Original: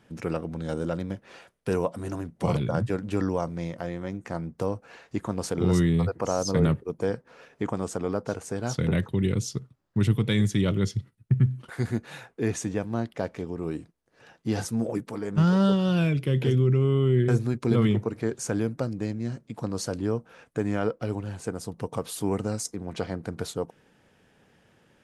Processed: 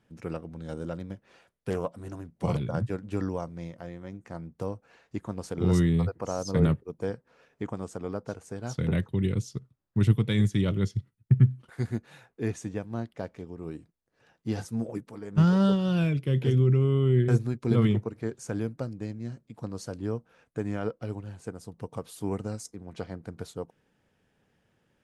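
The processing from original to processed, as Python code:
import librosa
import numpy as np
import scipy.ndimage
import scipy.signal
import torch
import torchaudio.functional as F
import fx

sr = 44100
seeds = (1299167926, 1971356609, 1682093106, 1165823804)

y = fx.doppler_dist(x, sr, depth_ms=0.2, at=(1.7, 2.13))
y = fx.low_shelf(y, sr, hz=140.0, db=5.0)
y = fx.upward_expand(y, sr, threshold_db=-34.0, expansion=1.5)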